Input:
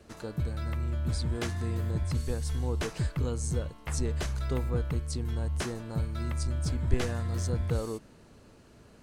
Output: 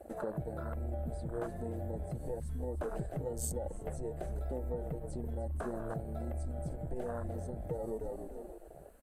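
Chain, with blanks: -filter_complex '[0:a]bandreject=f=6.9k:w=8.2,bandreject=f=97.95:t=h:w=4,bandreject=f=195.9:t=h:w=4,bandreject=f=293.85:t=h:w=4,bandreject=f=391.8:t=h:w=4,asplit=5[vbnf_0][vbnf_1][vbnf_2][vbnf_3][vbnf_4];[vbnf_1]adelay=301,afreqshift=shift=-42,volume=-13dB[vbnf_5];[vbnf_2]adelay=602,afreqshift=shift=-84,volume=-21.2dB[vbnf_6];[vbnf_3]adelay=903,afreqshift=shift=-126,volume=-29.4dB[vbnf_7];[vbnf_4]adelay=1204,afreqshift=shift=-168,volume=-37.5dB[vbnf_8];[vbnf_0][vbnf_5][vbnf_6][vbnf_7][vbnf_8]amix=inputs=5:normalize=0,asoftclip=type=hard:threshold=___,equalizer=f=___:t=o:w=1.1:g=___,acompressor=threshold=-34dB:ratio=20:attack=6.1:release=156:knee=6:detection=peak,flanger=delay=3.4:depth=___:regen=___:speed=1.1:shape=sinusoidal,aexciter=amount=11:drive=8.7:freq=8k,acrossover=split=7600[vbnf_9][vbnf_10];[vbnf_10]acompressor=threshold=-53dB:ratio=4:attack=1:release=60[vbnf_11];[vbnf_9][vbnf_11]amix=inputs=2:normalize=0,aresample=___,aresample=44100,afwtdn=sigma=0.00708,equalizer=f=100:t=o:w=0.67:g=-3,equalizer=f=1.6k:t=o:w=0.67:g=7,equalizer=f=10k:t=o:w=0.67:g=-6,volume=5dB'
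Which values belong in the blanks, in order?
-15dB, 620, 12.5, 2.9, -31, 32000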